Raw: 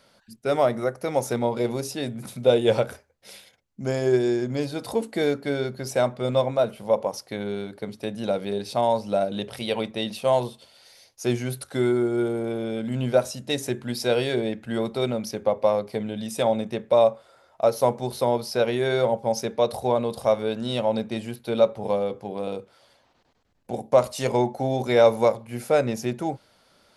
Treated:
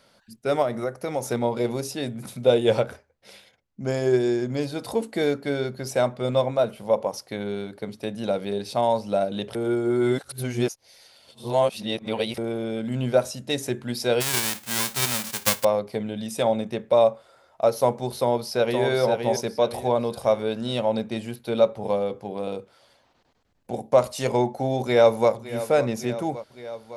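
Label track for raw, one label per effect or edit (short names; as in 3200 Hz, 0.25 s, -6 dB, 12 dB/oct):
0.620000	1.260000	compressor 2:1, threshold -24 dBFS
2.820000	3.880000	LPF 3900 Hz 6 dB/oct
9.550000	12.380000	reverse
14.200000	15.630000	spectral whitening exponent 0.1
18.180000	18.840000	echo throw 0.52 s, feedback 35%, level -5 dB
24.820000	25.310000	echo throw 0.56 s, feedback 75%, level -14.5 dB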